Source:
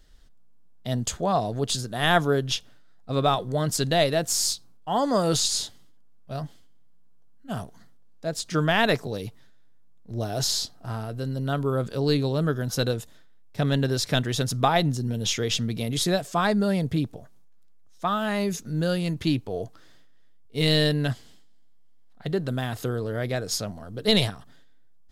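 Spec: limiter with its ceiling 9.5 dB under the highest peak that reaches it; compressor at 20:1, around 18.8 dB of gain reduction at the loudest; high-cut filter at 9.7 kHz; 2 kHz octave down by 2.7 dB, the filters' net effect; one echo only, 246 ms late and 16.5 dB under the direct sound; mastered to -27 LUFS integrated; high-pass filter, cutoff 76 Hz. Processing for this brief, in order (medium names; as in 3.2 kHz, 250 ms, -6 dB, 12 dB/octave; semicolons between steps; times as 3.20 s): high-pass 76 Hz; low-pass 9.7 kHz; peaking EQ 2 kHz -3.5 dB; compression 20:1, threshold -35 dBFS; peak limiter -31.5 dBFS; delay 246 ms -16.5 dB; trim +14.5 dB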